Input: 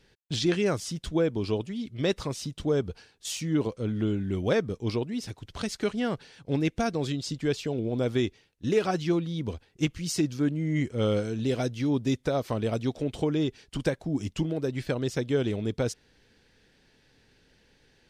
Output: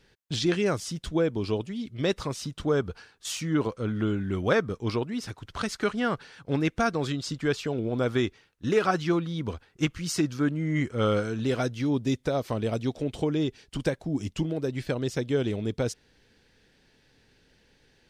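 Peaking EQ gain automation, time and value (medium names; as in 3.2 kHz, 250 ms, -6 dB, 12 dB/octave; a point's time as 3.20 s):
peaking EQ 1.3 kHz 1 oct
2.15 s +2.5 dB
2.65 s +9.5 dB
11.53 s +9.5 dB
11.99 s 0 dB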